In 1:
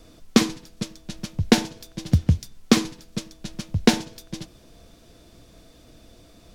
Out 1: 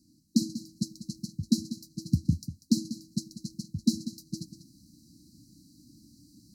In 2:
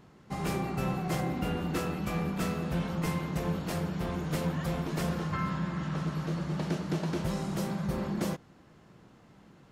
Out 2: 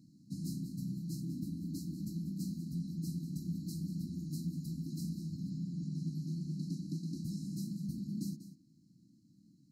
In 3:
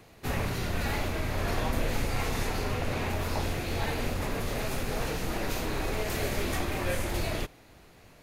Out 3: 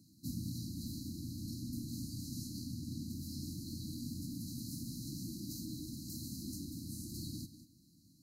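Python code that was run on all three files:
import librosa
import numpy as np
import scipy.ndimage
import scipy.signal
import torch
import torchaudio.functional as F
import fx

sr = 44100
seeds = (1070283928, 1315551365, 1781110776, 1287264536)

p1 = scipy.signal.sosfilt(scipy.signal.butter(2, 160.0, 'highpass', fs=sr, output='sos'), x)
p2 = fx.low_shelf(p1, sr, hz=290.0, db=5.5)
p3 = fx.rider(p2, sr, range_db=5, speed_s=0.5)
p4 = fx.brickwall_bandstop(p3, sr, low_hz=330.0, high_hz=3900.0)
p5 = p4 + fx.echo_single(p4, sr, ms=192, db=-13.0, dry=0)
y = p5 * 10.0 ** (-7.5 / 20.0)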